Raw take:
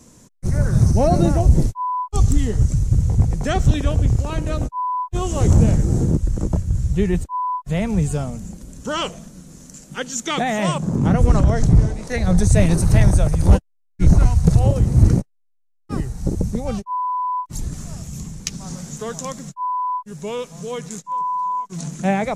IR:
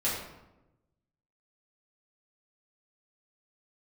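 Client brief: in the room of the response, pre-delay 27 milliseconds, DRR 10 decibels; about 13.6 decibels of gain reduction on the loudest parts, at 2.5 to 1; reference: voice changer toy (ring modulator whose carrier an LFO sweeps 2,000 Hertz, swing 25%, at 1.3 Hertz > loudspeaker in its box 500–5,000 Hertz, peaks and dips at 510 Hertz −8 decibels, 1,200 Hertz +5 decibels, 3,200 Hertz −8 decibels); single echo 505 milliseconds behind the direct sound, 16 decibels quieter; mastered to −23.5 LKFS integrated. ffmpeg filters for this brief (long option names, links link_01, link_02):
-filter_complex "[0:a]acompressor=threshold=-29dB:ratio=2.5,aecho=1:1:505:0.158,asplit=2[link_01][link_02];[1:a]atrim=start_sample=2205,adelay=27[link_03];[link_02][link_03]afir=irnorm=-1:irlink=0,volume=-18.5dB[link_04];[link_01][link_04]amix=inputs=2:normalize=0,aeval=exprs='val(0)*sin(2*PI*2000*n/s+2000*0.25/1.3*sin(2*PI*1.3*n/s))':channel_layout=same,highpass=500,equalizer=frequency=510:width_type=q:width=4:gain=-8,equalizer=frequency=1200:width_type=q:width=4:gain=5,equalizer=frequency=3200:width_type=q:width=4:gain=-8,lowpass=frequency=5000:width=0.5412,lowpass=frequency=5000:width=1.3066,volume=5dB"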